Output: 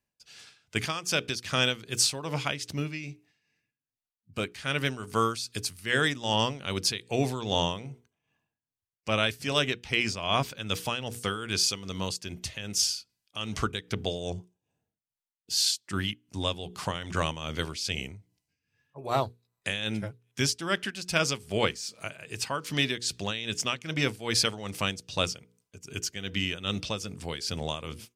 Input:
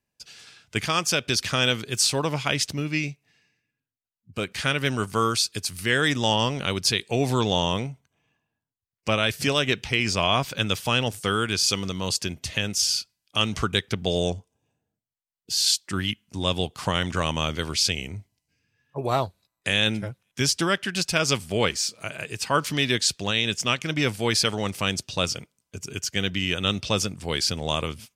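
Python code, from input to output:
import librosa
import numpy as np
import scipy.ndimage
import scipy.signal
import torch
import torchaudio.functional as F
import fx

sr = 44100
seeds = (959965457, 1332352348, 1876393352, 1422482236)

y = fx.hum_notches(x, sr, base_hz=60, count=8)
y = y * (1.0 - 0.71 / 2.0 + 0.71 / 2.0 * np.cos(2.0 * np.pi * 2.5 * (np.arange(len(y)) / sr)))
y = y * 10.0 ** (-2.0 / 20.0)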